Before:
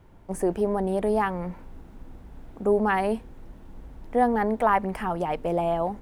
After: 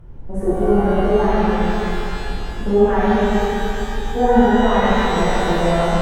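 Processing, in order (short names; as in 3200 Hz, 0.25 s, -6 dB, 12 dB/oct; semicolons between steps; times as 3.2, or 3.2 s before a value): upward compressor, threshold -45 dBFS; tilt -3 dB/oct; shimmer reverb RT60 3.1 s, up +12 st, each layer -8 dB, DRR -12 dB; gain -8 dB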